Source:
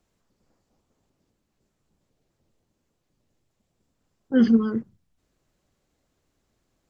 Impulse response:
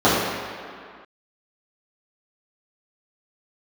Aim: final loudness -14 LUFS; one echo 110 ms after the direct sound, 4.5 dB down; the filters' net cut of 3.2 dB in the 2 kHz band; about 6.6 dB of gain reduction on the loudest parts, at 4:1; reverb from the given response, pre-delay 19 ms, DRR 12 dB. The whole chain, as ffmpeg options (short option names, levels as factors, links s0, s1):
-filter_complex "[0:a]equalizer=f=2000:t=o:g=-5,acompressor=threshold=0.0891:ratio=4,aecho=1:1:110:0.596,asplit=2[s0][s1];[1:a]atrim=start_sample=2205,adelay=19[s2];[s1][s2]afir=irnorm=-1:irlink=0,volume=0.0133[s3];[s0][s3]amix=inputs=2:normalize=0,volume=3.98"